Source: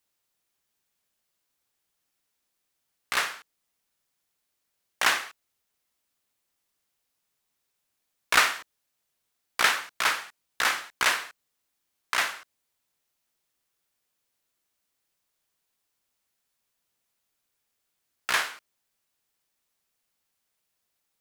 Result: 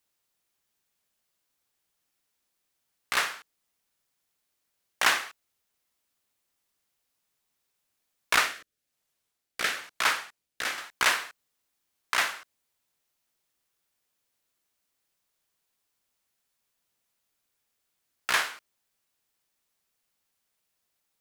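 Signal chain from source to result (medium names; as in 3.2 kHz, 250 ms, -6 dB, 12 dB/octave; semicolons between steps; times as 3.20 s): 8.36–10.78 s: rotary cabinet horn 1 Hz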